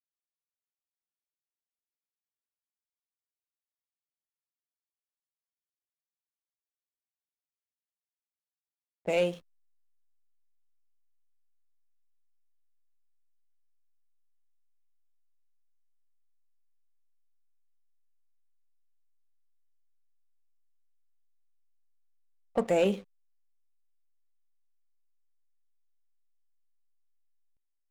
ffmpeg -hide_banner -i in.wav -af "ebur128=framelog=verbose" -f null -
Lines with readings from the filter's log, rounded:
Integrated loudness:
  I:         -29.8 LUFS
  Threshold: -40.4 LUFS
Loudness range:
  LRA:         5.2 LU
  Threshold: -56.7 LUFS
  LRA low:   -40.2 LUFS
  LRA high:  -35.0 LUFS